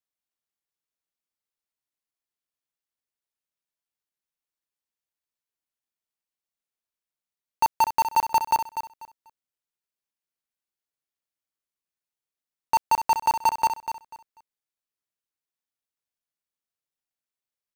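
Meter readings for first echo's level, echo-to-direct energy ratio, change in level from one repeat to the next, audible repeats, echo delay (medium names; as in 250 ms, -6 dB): -9.5 dB, -9.5 dB, -13.0 dB, 2, 245 ms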